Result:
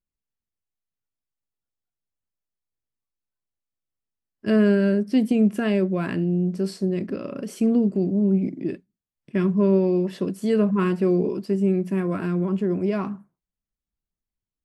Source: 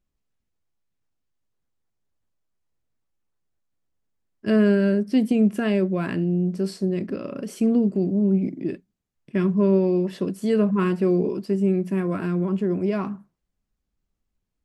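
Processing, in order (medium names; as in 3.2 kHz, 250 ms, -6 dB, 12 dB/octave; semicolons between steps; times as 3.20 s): spectral noise reduction 12 dB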